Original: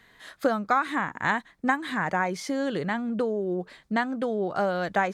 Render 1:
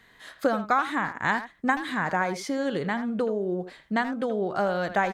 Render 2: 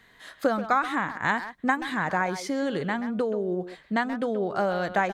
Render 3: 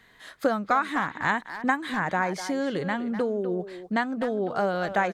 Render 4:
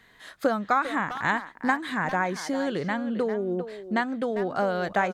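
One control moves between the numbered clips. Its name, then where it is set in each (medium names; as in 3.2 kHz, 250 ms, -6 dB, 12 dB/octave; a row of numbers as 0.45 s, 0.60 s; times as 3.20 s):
speakerphone echo, time: 80 ms, 130 ms, 250 ms, 400 ms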